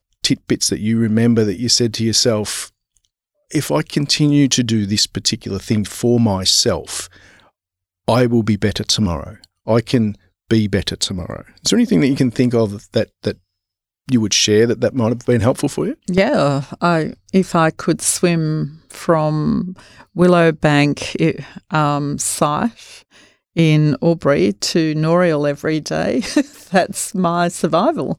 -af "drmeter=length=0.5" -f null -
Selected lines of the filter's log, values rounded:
Channel 1: DR: 8.6
Overall DR: 8.6